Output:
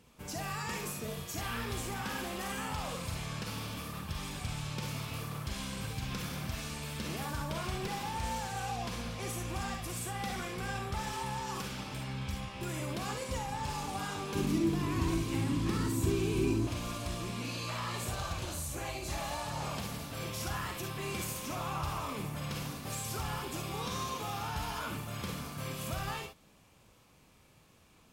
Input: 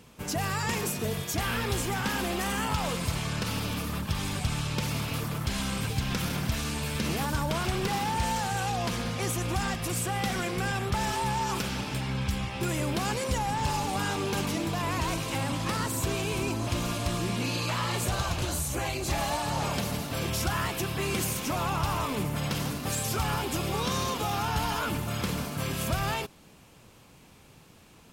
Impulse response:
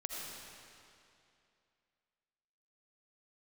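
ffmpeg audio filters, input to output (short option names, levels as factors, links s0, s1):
-filter_complex "[0:a]asettb=1/sr,asplit=3[s0][s1][s2];[s0]atrim=end=14.354[s3];[s1]atrim=start=14.35:end=16.67,asetpts=PTS-STARTPTS,afade=t=in:d=0.004:c=qsin,afade=t=out:st=2.316:d=0.004:c=qsin,lowshelf=f=450:t=q:w=3:g=7[s4];[s2]atrim=start=16.666[s5];[s3][s4]acrossfade=d=0.004:c1=hsin:c2=qsin[s6];[s6][s5]acrossfade=d=0.004:c1=qsin:c2=hsin[s7];[1:a]atrim=start_sample=2205,atrim=end_sample=6174,asetrate=79380,aresample=44100[s8];[s7][s8]afir=irnorm=-1:irlink=0,volume=0.891"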